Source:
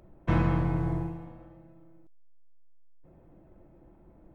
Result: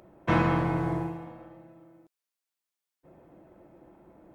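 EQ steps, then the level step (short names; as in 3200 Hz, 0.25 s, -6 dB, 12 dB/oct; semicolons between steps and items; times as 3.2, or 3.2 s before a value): HPF 350 Hz 6 dB/oct; +7.0 dB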